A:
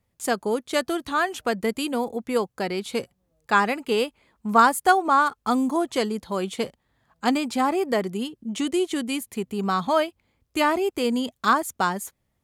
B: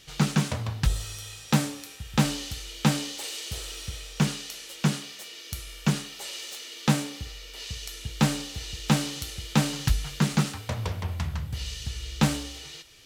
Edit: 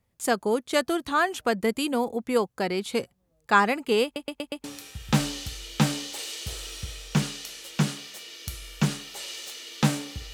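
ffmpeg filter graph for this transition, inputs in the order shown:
-filter_complex "[0:a]apad=whole_dur=10.33,atrim=end=10.33,asplit=5[a][b][c][d][e];[a]atrim=end=4.162[f];[b]atrim=start=4.038:end=4.162[g];[c]atrim=start=4.038:end=4.162[h];[d]atrim=start=4.038:end=4.162[i];[e]atrim=start=4.038:end=4.162[j];[1:a]atrim=start=1.688:end=7.38[k];[f][g]acrossfade=d=0.004:c1=hsin:c2=hsin[l];[l][h]acrossfade=d=0.004:c1=hsin:c2=hsin[m];[m][i]acrossfade=d=0.004:c1=hsin:c2=hsin[n];[n][j]acrossfade=d=0.004:c1=hsin:c2=hsin[o];[o][k]acrossfade=d=0.004:c1=hsin:c2=hsin"

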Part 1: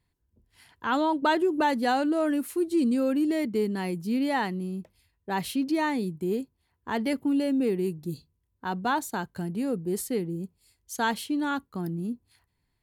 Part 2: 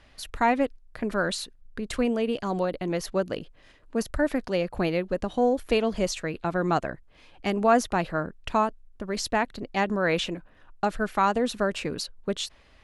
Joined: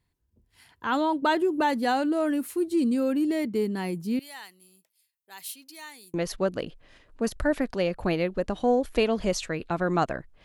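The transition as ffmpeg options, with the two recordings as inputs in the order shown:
-filter_complex "[0:a]asettb=1/sr,asplit=3[a][b][c];[a]atrim=end=4.194[d];[b]atrim=start=4.19:end=6.14,asetpts=PTS-STARTPTS,afade=t=in:d=0.004:c=qsin,afade=t=out:st=1.946:d=0.004:c=qsin,aderivative[e];[c]atrim=start=6.136[f];[d][e]acrossfade=d=0.004:c1=hsin:c2=qsin[g];[g][f]acrossfade=d=0.004:c1=qsin:c2=hsin,apad=whole_dur=10.44,atrim=end=10.44,atrim=end=6.142[h];[1:a]atrim=start=2.878:end=7.18[i];[h][i]acrossfade=d=0.004:c1=hsin:c2=hsin"

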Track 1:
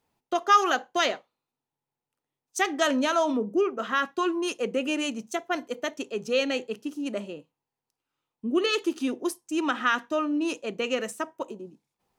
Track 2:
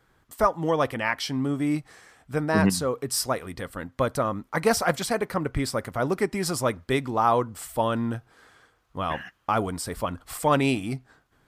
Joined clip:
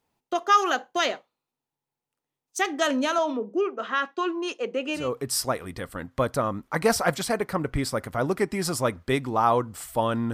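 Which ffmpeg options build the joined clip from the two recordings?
-filter_complex "[0:a]asettb=1/sr,asplit=3[a][b][c];[a]atrim=end=3.184[d];[b]atrim=start=3.18:end=5.11,asetpts=PTS-STARTPTS,afade=t=in:d=0.004:c=qsin,afade=t=out:st=1.926:d=0.004:c=qsin,highpass=280,lowpass=5.2k[e];[c]atrim=start=5.106[f];[d][e]acrossfade=d=0.004:c1=hsin:c2=qsin[g];[g][f]acrossfade=d=0.004:c1=qsin:c2=hsin,apad=whole_dur=10.33,atrim=end=10.33,atrim=end=5.11,asetpts=PTS-STARTPTS[h];[1:a]atrim=start=2.74:end=8.14,asetpts=PTS-STARTPTS[i];[h][i]acrossfade=d=0.18:c1=tri:c2=tri"

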